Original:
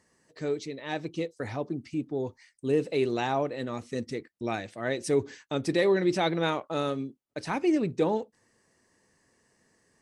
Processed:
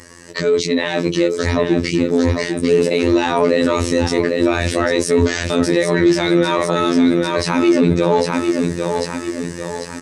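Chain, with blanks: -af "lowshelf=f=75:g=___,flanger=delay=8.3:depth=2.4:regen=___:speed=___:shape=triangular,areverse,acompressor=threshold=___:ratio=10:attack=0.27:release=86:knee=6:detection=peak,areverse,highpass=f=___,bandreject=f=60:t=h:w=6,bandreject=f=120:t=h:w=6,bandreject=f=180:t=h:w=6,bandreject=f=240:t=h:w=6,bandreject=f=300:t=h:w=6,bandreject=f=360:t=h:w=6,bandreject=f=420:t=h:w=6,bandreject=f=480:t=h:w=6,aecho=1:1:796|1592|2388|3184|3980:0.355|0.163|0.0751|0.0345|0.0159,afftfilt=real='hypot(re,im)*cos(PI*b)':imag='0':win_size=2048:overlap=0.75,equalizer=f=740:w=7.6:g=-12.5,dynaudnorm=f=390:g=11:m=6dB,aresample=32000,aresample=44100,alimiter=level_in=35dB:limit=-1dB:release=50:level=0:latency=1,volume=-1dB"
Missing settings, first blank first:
6, -31, 0.66, -41dB, 43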